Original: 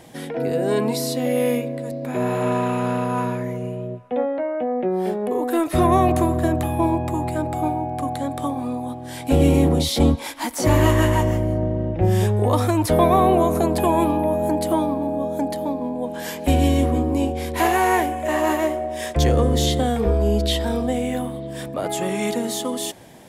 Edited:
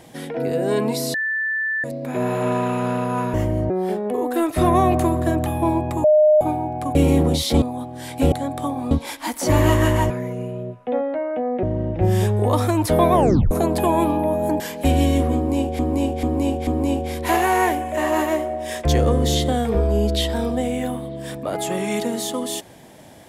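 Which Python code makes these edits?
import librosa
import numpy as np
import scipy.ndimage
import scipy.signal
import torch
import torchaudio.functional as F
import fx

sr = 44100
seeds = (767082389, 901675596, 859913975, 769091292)

y = fx.edit(x, sr, fx.bleep(start_s=1.14, length_s=0.7, hz=1760.0, db=-20.0),
    fx.swap(start_s=3.34, length_s=1.53, other_s=11.27, other_length_s=0.36),
    fx.bleep(start_s=7.21, length_s=0.37, hz=611.0, db=-10.0),
    fx.swap(start_s=8.12, length_s=0.59, other_s=9.41, other_length_s=0.67),
    fx.tape_stop(start_s=13.13, length_s=0.38),
    fx.cut(start_s=14.6, length_s=1.63),
    fx.repeat(start_s=16.98, length_s=0.44, count=4), tone=tone)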